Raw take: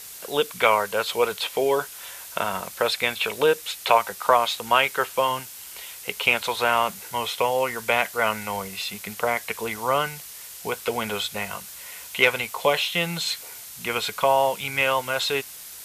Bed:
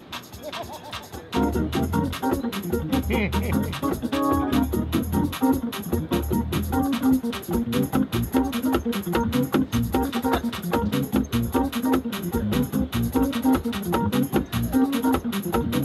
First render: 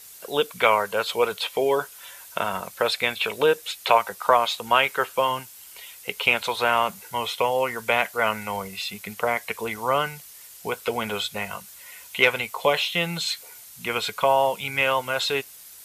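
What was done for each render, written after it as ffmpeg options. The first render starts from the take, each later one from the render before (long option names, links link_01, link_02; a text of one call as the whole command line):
ffmpeg -i in.wav -af "afftdn=noise_reduction=7:noise_floor=-41" out.wav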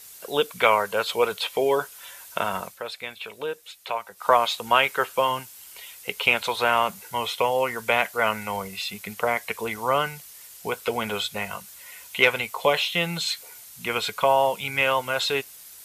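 ffmpeg -i in.wav -filter_complex "[0:a]asplit=3[link_01][link_02][link_03];[link_01]atrim=end=2.8,asetpts=PTS-STARTPTS,afade=type=out:start_time=2.63:duration=0.17:silence=0.281838[link_04];[link_02]atrim=start=2.8:end=4.15,asetpts=PTS-STARTPTS,volume=-11dB[link_05];[link_03]atrim=start=4.15,asetpts=PTS-STARTPTS,afade=type=in:duration=0.17:silence=0.281838[link_06];[link_04][link_05][link_06]concat=n=3:v=0:a=1" out.wav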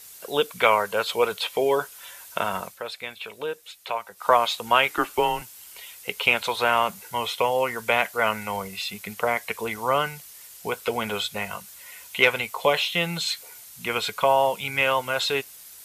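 ffmpeg -i in.wav -filter_complex "[0:a]asettb=1/sr,asplit=3[link_01][link_02][link_03];[link_01]atrim=end=4.904[link_04];[link_02]atrim=start=4.9:end=5.42,asetpts=PTS-STARTPTS,afade=type=in:duration=0.004:curve=qsin,afade=type=out:start_time=0.516:duration=0.004:curve=qsin,afreqshift=-110[link_05];[link_03]atrim=start=5.416[link_06];[link_04][link_05]acrossfade=duration=0.004:curve1=hsin:curve2=qsin[link_07];[link_07][link_06]acrossfade=duration=0.004:curve1=qsin:curve2=hsin" out.wav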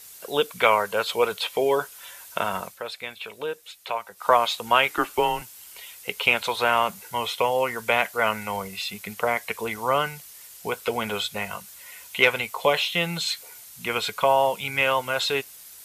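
ffmpeg -i in.wav -af anull out.wav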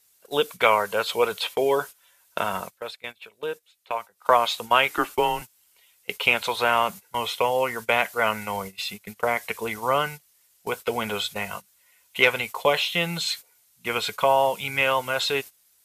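ffmpeg -i in.wav -af "agate=range=-17dB:threshold=-34dB:ratio=16:detection=peak" out.wav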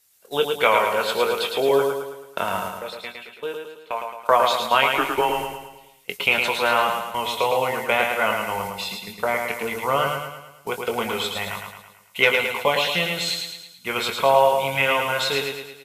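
ffmpeg -i in.wav -filter_complex "[0:a]asplit=2[link_01][link_02];[link_02]adelay=22,volume=-8dB[link_03];[link_01][link_03]amix=inputs=2:normalize=0,asplit=2[link_04][link_05];[link_05]aecho=0:1:109|218|327|436|545|654:0.596|0.298|0.149|0.0745|0.0372|0.0186[link_06];[link_04][link_06]amix=inputs=2:normalize=0" out.wav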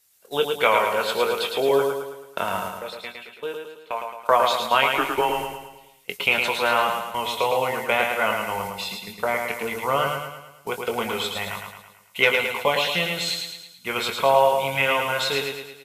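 ffmpeg -i in.wav -af "volume=-1dB" out.wav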